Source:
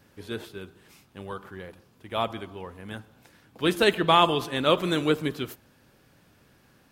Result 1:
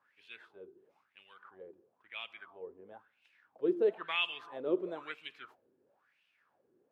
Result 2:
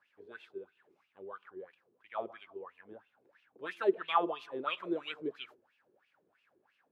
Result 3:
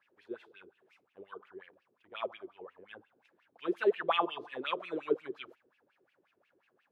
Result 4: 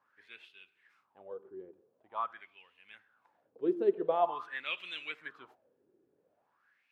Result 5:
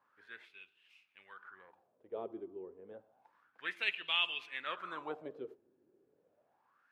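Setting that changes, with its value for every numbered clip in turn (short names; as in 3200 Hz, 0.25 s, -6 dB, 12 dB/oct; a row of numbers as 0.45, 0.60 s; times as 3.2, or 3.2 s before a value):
wah, rate: 1, 3, 5.6, 0.46, 0.3 Hz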